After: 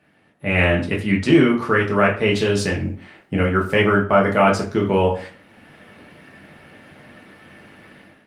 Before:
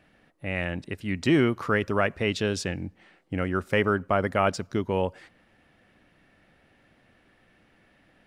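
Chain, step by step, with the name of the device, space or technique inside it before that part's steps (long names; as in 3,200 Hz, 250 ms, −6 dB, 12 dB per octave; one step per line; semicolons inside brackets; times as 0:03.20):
far-field microphone of a smart speaker (convolution reverb RT60 0.40 s, pre-delay 3 ms, DRR −3 dB; high-pass filter 100 Hz 24 dB per octave; automatic gain control gain up to 15 dB; level −1.5 dB; Opus 32 kbit/s 48,000 Hz)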